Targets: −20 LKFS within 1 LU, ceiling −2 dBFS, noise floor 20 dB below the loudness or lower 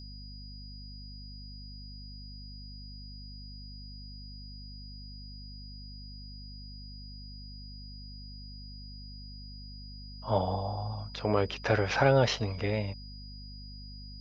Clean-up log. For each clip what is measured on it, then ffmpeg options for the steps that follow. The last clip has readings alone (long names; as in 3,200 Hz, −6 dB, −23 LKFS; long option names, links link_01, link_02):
mains hum 50 Hz; hum harmonics up to 250 Hz; level of the hum −43 dBFS; interfering tone 4,900 Hz; level of the tone −49 dBFS; integrated loudness −29.5 LKFS; sample peak −10.0 dBFS; target loudness −20.0 LKFS
→ -af "bandreject=frequency=50:width_type=h:width=4,bandreject=frequency=100:width_type=h:width=4,bandreject=frequency=150:width_type=h:width=4,bandreject=frequency=200:width_type=h:width=4,bandreject=frequency=250:width_type=h:width=4"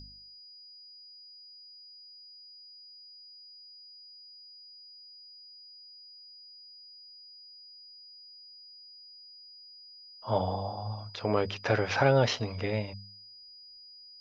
mains hum none found; interfering tone 4,900 Hz; level of the tone −49 dBFS
→ -af "bandreject=frequency=4900:width=30"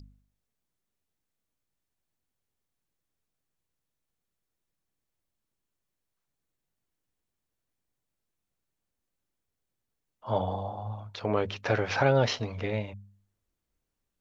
interfering tone none found; integrated loudness −29.5 LKFS; sample peak −10.5 dBFS; target loudness −20.0 LKFS
→ -af "volume=9.5dB,alimiter=limit=-2dB:level=0:latency=1"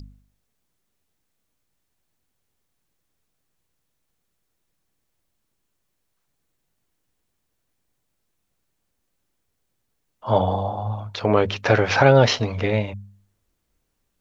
integrated loudness −20.0 LKFS; sample peak −2.0 dBFS; background noise floor −75 dBFS